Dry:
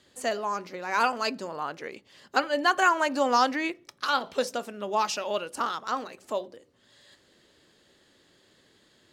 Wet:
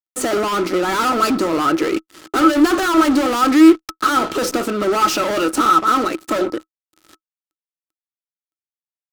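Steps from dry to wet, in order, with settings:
fuzz pedal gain 42 dB, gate −50 dBFS
hollow resonant body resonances 320/1,300 Hz, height 18 dB, ringing for 75 ms
level −7 dB

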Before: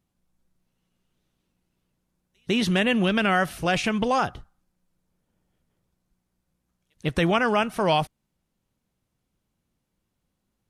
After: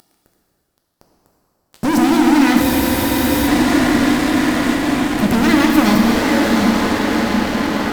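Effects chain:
drawn EQ curve 190 Hz 0 dB, 340 Hz −6 dB, 520 Hz −12 dB, 840 Hz −14 dB, 1,400 Hz −8 dB, 2,000 Hz −18 dB, 4,300 Hz −11 dB, 6,800 Hz −5 dB
feedback delay with all-pass diffusion 1,010 ms, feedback 48%, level −12.5 dB
in parallel at −3 dB: upward compression, threshold −22 dBFS
on the sum: wrong playback speed 33 rpm record played at 45 rpm
fuzz pedal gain 39 dB, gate −39 dBFS
high-shelf EQ 6,500 Hz −4 dB
dense smooth reverb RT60 3.1 s, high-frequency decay 0.95×, DRR −0.5 dB
frozen spectrum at 0:02.65, 0.83 s
level −1 dB

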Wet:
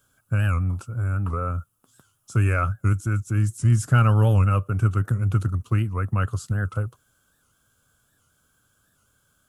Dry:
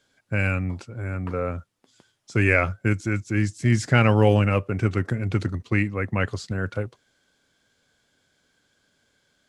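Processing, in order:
in parallel at +0.5 dB: downward compressor, threshold −29 dBFS, peak gain reduction 16 dB
on the sum: drawn EQ curve 120 Hz 0 dB, 200 Hz −8 dB, 380 Hz −12 dB, 900 Hz −10 dB, 1,300 Hz +1 dB, 2,000 Hz −22 dB, 2,800 Hz −10 dB, 4,400 Hz −16 dB, 12,000 Hz +9 dB
wow of a warped record 78 rpm, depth 160 cents
level +1.5 dB

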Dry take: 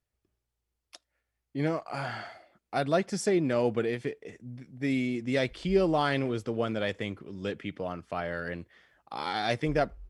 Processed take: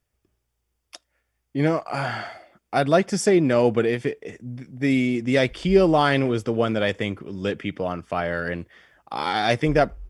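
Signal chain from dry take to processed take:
notch filter 4,100 Hz, Q 9.7
level +8 dB

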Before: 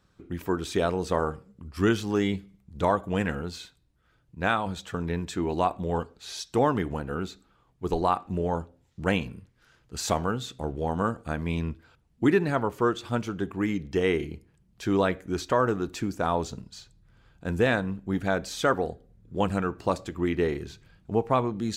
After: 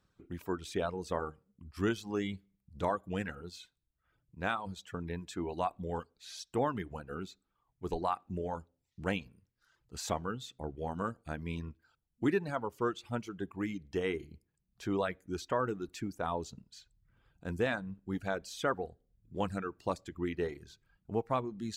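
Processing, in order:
reverb reduction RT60 0.81 s
level −8 dB

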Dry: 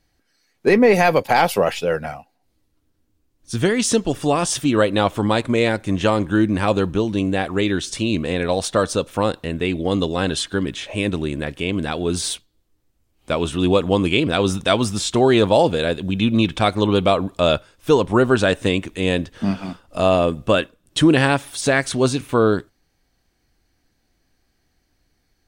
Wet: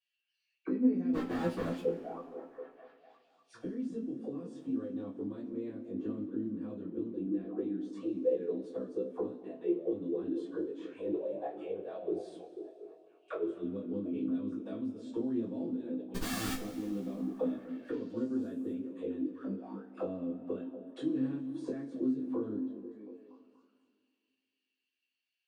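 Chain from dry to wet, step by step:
envelope filter 260–2,800 Hz, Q 20, down, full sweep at −15.5 dBFS
0:11.03–0:11.44: flat-topped bell 720 Hz +15 dB 1.1 octaves
0:16.14–0:16.57: comparator with hysteresis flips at −43.5 dBFS
high-shelf EQ 2,200 Hz +9 dB
0:01.13–0:01.80: leveller curve on the samples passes 5
chorus effect 0.12 Hz, delay 15.5 ms, depth 6.3 ms
echo through a band-pass that steps 243 ms, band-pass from 200 Hz, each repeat 0.7 octaves, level −7 dB
coupled-rooms reverb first 0.2 s, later 2.3 s, from −22 dB, DRR −10 dB
level −8.5 dB

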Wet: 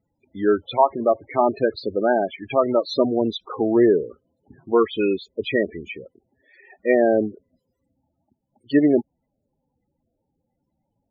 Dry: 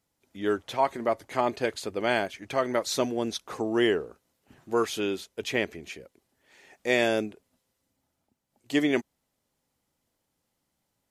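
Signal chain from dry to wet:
treble cut that deepens with the level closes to 1,400 Hz, closed at −20.5 dBFS
spectral peaks only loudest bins 16
level +8.5 dB

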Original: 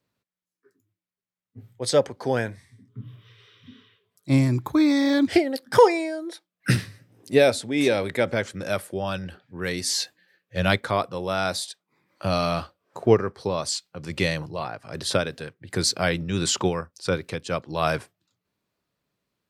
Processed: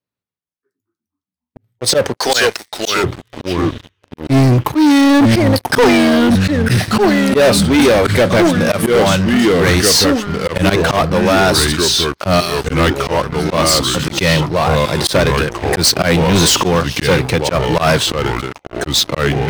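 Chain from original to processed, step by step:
0:12.40–0:13.51: first-order pre-emphasis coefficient 0.9
delay with pitch and tempo change per echo 106 ms, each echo −3 semitones, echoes 3, each echo −6 dB
0:02.17–0:03.04: meter weighting curve ITU-R 468
volume swells 111 ms
leveller curve on the samples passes 5
notch filter 7,200 Hz, Q 13

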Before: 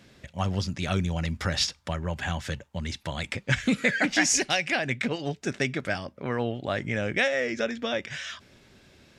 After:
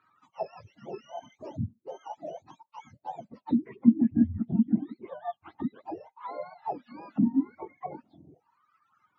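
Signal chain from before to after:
frequency axis turned over on the octave scale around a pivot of 710 Hz
envelope filter 230–1,300 Hz, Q 9.4, down, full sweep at −19.5 dBFS
reverb reduction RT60 1.1 s
level +8.5 dB

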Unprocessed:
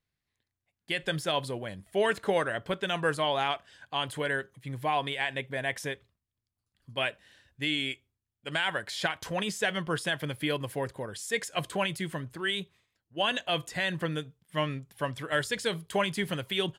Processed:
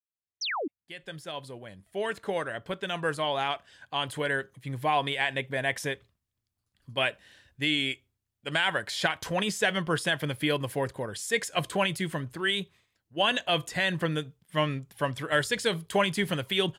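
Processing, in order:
fade in at the beginning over 5.11 s
sound drawn into the spectrogram fall, 0:00.41–0:00.68, 250–6,400 Hz −34 dBFS
level +3 dB

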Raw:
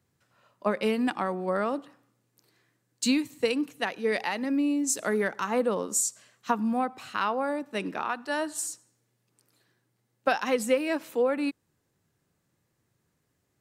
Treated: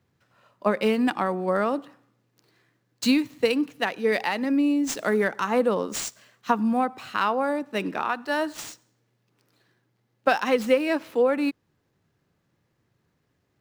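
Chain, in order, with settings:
running median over 5 samples
level +4 dB

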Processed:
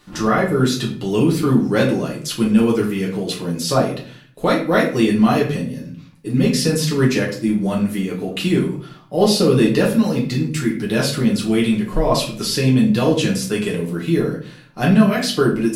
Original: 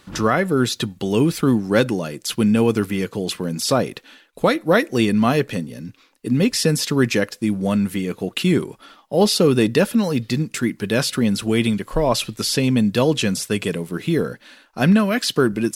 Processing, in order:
rectangular room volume 48 cubic metres, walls mixed, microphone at 0.91 metres
level −4.5 dB

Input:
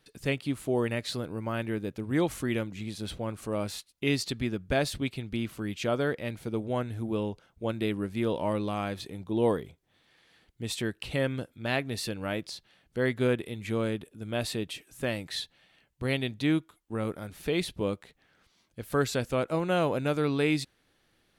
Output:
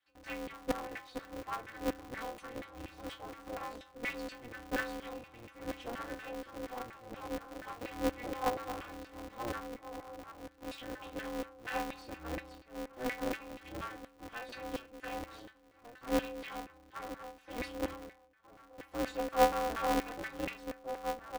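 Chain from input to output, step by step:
0:16.30–0:17.56: meter weighting curve A
in parallel at −12 dB: log-companded quantiser 2 bits
on the sum: stiff-string resonator 190 Hz, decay 0.77 s, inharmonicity 0.03
slap from a distant wall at 260 metres, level −8 dB
auto-filter band-pass saw down 4.2 Hz 330–1,900 Hz
ring modulator with a square carrier 120 Hz
level +15 dB

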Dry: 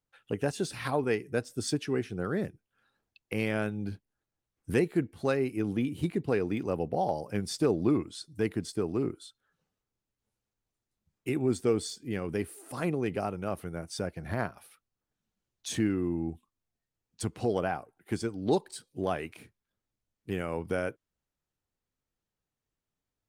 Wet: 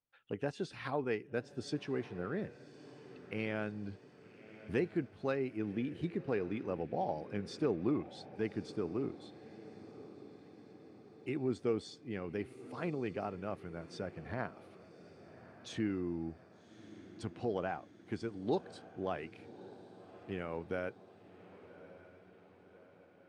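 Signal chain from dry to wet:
low-pass filter 4,100 Hz 12 dB per octave
low-shelf EQ 88 Hz −6.5 dB
on a send: feedback delay with all-pass diffusion 1,160 ms, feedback 57%, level −16 dB
on the sum: level −6.5 dB

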